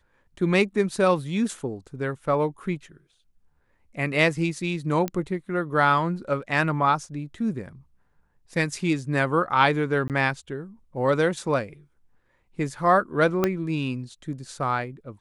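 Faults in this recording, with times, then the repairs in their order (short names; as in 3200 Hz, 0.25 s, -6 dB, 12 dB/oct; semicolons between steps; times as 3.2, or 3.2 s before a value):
5.08 pop -14 dBFS
10.08–10.1 gap 18 ms
13.44 pop -8 dBFS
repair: de-click; interpolate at 10.08, 18 ms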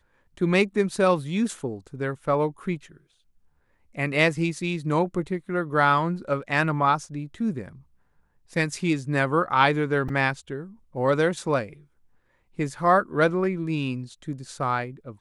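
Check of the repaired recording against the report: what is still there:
13.44 pop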